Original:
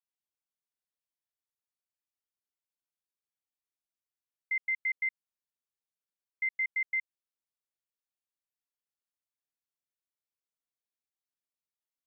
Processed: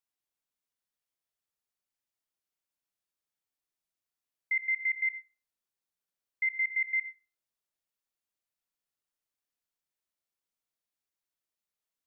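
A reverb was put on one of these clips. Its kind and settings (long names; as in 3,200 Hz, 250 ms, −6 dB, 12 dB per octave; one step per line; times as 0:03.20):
comb and all-pass reverb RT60 0.63 s, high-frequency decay 0.3×, pre-delay 15 ms, DRR 8 dB
level +2 dB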